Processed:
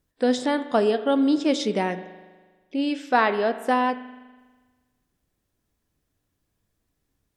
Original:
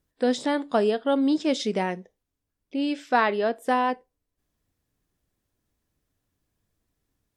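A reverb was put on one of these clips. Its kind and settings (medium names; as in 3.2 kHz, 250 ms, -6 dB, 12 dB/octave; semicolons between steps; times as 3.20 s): spring tank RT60 1.4 s, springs 40 ms, chirp 65 ms, DRR 11.5 dB; trim +1.5 dB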